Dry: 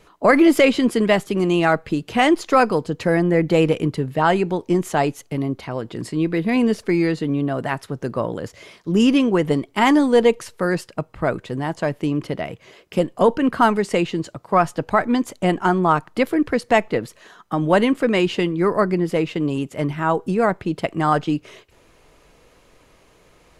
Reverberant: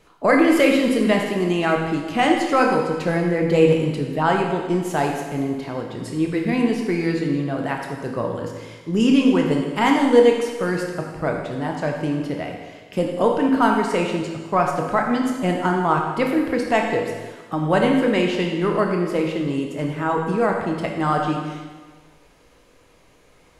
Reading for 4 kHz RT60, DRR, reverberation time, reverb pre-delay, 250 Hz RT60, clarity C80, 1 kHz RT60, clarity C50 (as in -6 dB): 1.4 s, 1.0 dB, 1.4 s, 19 ms, 1.4 s, 5.0 dB, 1.4 s, 3.0 dB